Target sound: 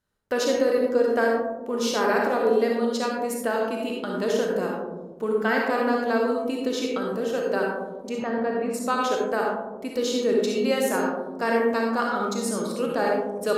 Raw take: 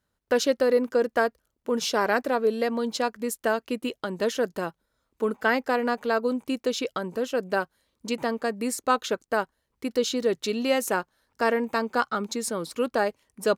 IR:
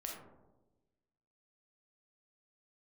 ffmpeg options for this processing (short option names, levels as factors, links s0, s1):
-filter_complex "[0:a]asplit=3[s0][s1][s2];[s0]afade=t=out:st=8.08:d=0.02[s3];[s1]lowpass=2200,afade=t=in:st=8.08:d=0.02,afade=t=out:st=8.73:d=0.02[s4];[s2]afade=t=in:st=8.73:d=0.02[s5];[s3][s4][s5]amix=inputs=3:normalize=0[s6];[1:a]atrim=start_sample=2205,asetrate=28665,aresample=44100[s7];[s6][s7]afir=irnorm=-1:irlink=0"